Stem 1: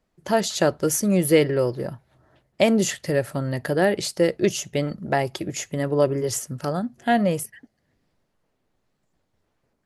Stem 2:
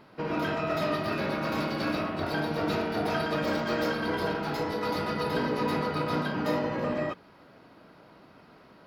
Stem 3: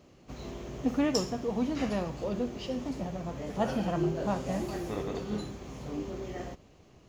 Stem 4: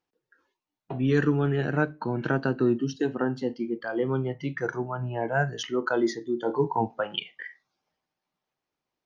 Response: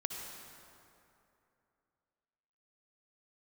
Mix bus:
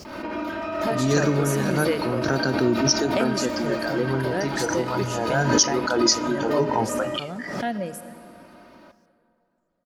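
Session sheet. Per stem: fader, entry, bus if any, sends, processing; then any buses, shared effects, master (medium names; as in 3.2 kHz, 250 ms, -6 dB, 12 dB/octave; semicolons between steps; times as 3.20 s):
-11.0 dB, 0.55 s, send -6 dB, reverb removal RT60 1.8 s
-0.5 dB, 0.05 s, send -10 dB, compression, threshold -32 dBFS, peak gain reduction 8.5 dB; comb 3.3 ms, depth 97%
-12.5 dB, 0.00 s, no send, none
+1.0 dB, 0.00 s, no send, resonant high shelf 4.1 kHz +8 dB, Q 3; peaking EQ 5.2 kHz +8.5 dB 1.5 oct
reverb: on, RT60 2.8 s, pre-delay 53 ms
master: swell ahead of each attack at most 48 dB/s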